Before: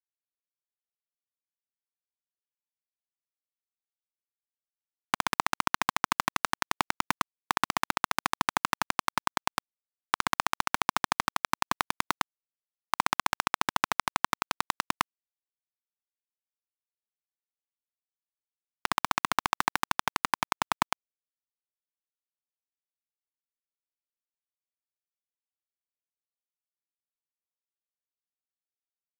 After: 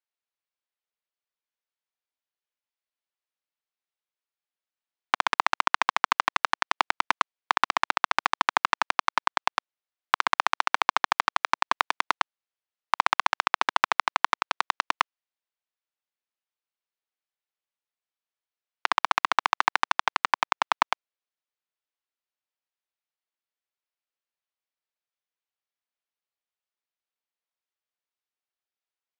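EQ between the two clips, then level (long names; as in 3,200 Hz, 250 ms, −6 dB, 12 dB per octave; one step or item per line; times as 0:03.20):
band-pass filter 480–4,200 Hz
+5.5 dB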